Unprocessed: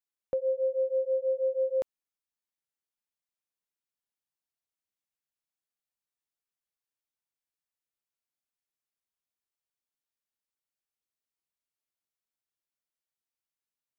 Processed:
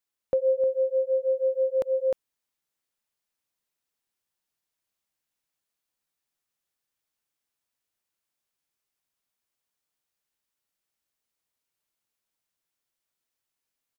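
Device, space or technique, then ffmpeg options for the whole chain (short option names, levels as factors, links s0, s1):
ducked delay: -filter_complex "[0:a]asplit=3[s0][s1][s2];[s1]adelay=307,volume=0.794[s3];[s2]apad=whole_len=630185[s4];[s3][s4]sidechaincompress=threshold=0.0126:ratio=8:attack=38:release=144[s5];[s0][s5]amix=inputs=2:normalize=0,volume=1.88"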